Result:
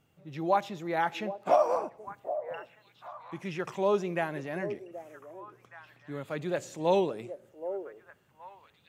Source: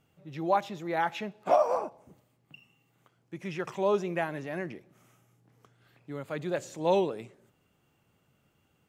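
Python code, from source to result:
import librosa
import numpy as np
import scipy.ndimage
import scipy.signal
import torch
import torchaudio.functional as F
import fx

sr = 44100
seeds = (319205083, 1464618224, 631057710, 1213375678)

y = fx.echo_stepped(x, sr, ms=774, hz=500.0, octaves=1.4, feedback_pct=70, wet_db=-9.0)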